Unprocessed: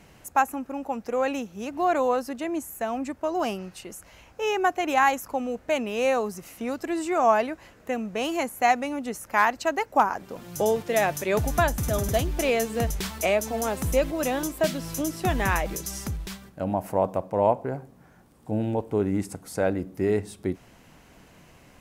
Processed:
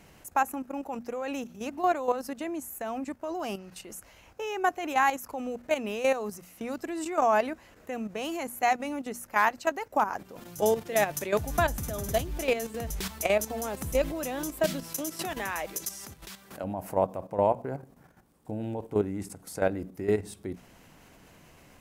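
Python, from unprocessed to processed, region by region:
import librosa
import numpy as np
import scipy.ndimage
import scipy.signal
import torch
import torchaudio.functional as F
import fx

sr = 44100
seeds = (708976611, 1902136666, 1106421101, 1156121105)

y = fx.chain(x, sr, fx.highpass(hz=440.0, slope=6),
    fx.pre_swell(db_per_s=120.0), at=(14.83, 16.64))
y = fx.level_steps(y, sr, step_db=11)
y = fx.high_shelf(y, sr, hz=11000.0, db=5.0)
y = fx.hum_notches(y, sr, base_hz=60, count=4)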